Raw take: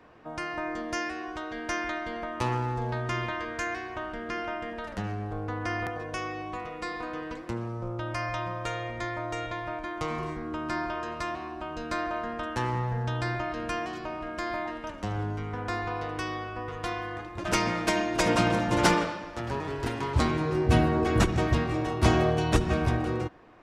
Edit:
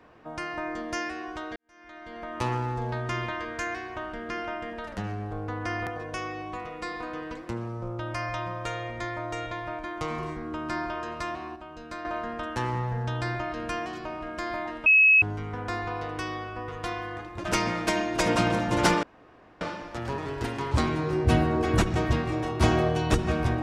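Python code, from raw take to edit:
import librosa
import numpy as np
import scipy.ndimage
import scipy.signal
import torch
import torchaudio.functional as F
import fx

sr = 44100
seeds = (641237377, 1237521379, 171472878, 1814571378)

y = fx.edit(x, sr, fx.fade_in_span(start_s=1.56, length_s=0.81, curve='qua'),
    fx.clip_gain(start_s=11.56, length_s=0.49, db=-7.0),
    fx.bleep(start_s=14.86, length_s=0.36, hz=2570.0, db=-14.0),
    fx.insert_room_tone(at_s=19.03, length_s=0.58), tone=tone)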